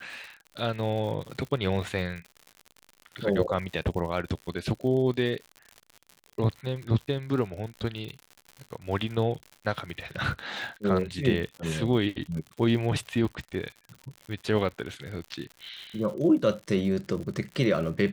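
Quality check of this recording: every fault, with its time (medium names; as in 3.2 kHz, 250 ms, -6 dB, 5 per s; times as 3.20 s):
crackle 96 per s -36 dBFS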